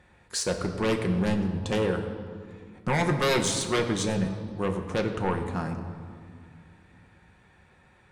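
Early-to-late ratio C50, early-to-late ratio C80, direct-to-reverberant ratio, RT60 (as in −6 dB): 8.0 dB, 9.0 dB, 3.5 dB, 2.1 s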